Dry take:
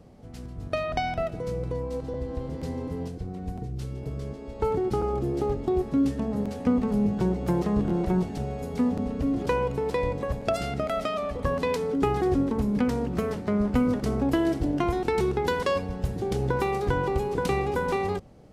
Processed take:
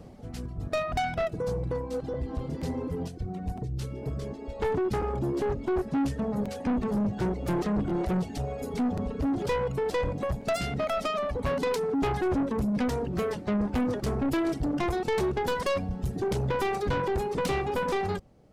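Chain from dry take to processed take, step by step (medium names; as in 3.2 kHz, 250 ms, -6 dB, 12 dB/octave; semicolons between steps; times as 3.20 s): reverb removal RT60 1.5 s; saturation -28.5 dBFS, distortion -8 dB; trim +5 dB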